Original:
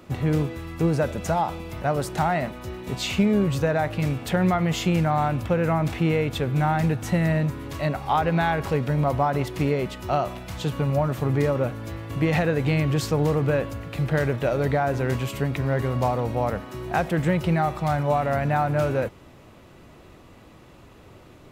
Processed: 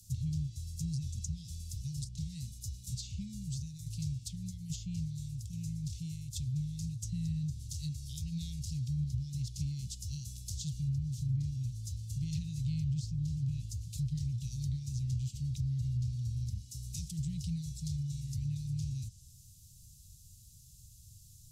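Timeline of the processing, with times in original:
3.03–7.02 tremolo saw down 1.2 Hz, depth 55%
whole clip: inverse Chebyshev band-stop 510–1500 Hz, stop band 80 dB; tilt shelf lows -6.5 dB, about 1100 Hz; treble ducked by the level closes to 1900 Hz, closed at -30.5 dBFS; gain +3 dB

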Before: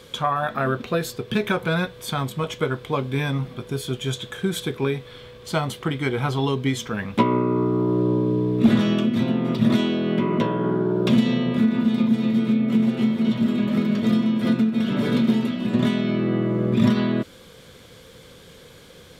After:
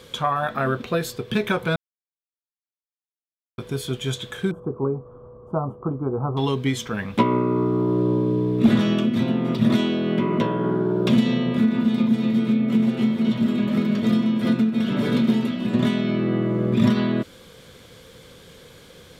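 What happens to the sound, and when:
1.76–3.58 mute
4.51–6.37 elliptic low-pass 1200 Hz

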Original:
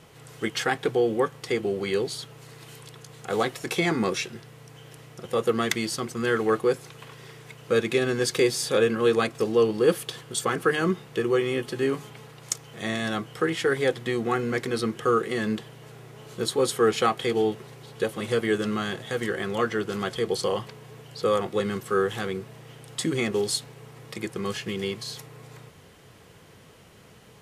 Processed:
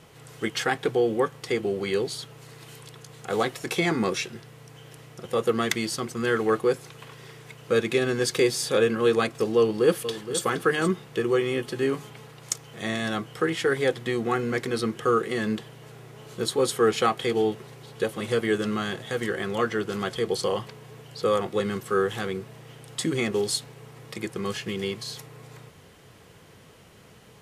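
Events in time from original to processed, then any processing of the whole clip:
9.57–10.4 echo throw 0.47 s, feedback 10%, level -11.5 dB

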